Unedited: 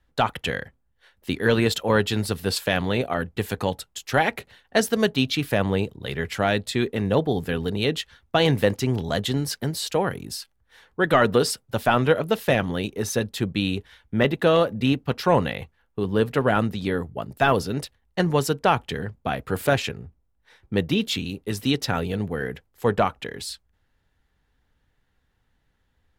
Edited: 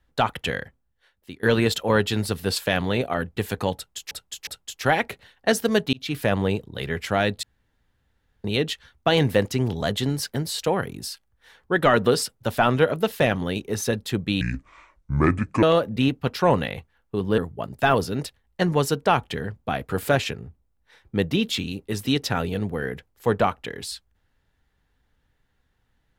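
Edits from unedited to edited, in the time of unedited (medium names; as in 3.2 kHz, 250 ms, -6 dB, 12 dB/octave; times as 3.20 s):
0.61–1.43 s: fade out, to -20 dB
3.75–4.11 s: loop, 3 plays
5.21–5.47 s: fade in
6.71–7.72 s: room tone
13.69–14.47 s: speed 64%
16.22–16.96 s: delete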